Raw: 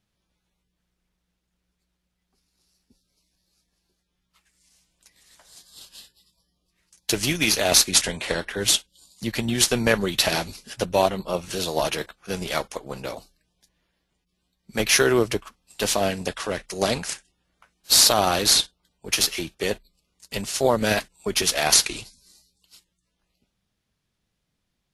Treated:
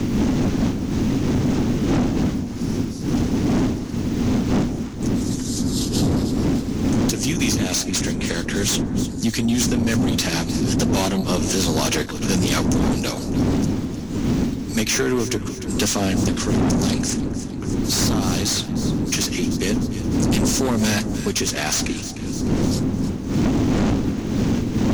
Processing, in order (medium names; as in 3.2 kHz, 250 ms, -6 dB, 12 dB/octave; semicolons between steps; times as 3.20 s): wind noise 290 Hz -22 dBFS; fifteen-band graphic EQ 100 Hz +4 dB, 250 Hz +10 dB, 630 Hz -7 dB, 6.3 kHz +11 dB; level rider; short-mantissa float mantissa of 6-bit; saturation -15.5 dBFS, distortion -8 dB; echo whose repeats swap between lows and highs 151 ms, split 880 Hz, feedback 60%, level -12.5 dB; three bands compressed up and down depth 70%; trim +1.5 dB